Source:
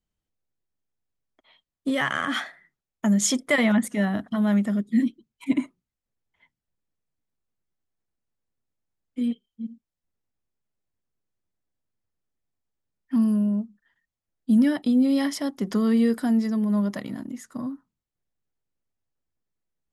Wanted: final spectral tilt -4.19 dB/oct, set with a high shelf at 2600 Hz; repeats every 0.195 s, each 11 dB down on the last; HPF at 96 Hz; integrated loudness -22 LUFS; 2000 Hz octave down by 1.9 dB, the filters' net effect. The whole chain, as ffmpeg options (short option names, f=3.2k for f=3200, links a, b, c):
-af "highpass=96,equalizer=f=2k:t=o:g=-4.5,highshelf=f=2.6k:g=6,aecho=1:1:195|390|585:0.282|0.0789|0.0221,volume=2dB"